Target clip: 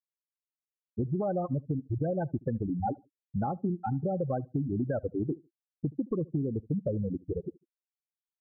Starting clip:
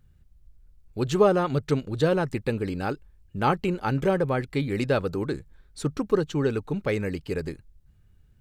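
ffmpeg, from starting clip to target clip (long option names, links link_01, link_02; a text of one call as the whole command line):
ffmpeg -i in.wav -filter_complex "[0:a]afftfilt=real='re*gte(hypot(re,im),0.2)':imag='im*gte(hypot(re,im),0.2)':win_size=1024:overlap=0.75,equalizer=frequency=420:width_type=o:width=1.8:gain=8,aecho=1:1:1.2:0.77,alimiter=limit=-15dB:level=0:latency=1:release=143,acompressor=threshold=-27dB:ratio=6,asuperstop=centerf=950:order=8:qfactor=4.2,asplit=2[link_01][link_02];[link_02]adelay=74,lowpass=frequency=930:poles=1,volume=-23dB,asplit=2[link_03][link_04];[link_04]adelay=74,lowpass=frequency=930:poles=1,volume=0.27[link_05];[link_01][link_03][link_05]amix=inputs=3:normalize=0" out.wav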